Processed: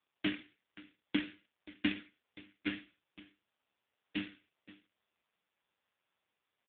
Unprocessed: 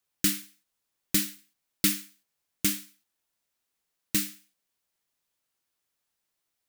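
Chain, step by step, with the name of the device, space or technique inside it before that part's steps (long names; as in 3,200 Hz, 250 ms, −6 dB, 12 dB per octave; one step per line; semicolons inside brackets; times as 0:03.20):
satellite phone (band-pass filter 320–3,100 Hz; single-tap delay 530 ms −20 dB; level +4.5 dB; AMR narrowband 4.75 kbit/s 8,000 Hz)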